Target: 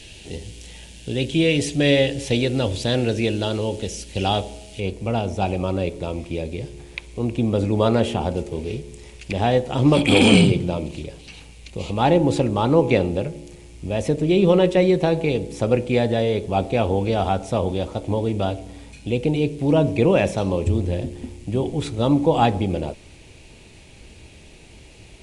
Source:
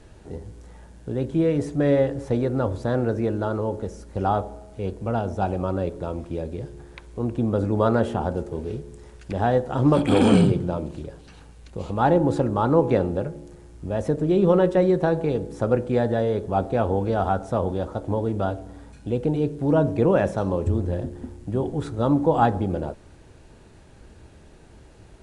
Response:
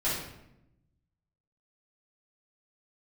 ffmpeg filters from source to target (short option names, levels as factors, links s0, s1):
-af "asetnsamples=n=441:p=0,asendcmd='4.8 highshelf g 7',highshelf=f=1900:t=q:w=3:g=13.5,volume=1.33"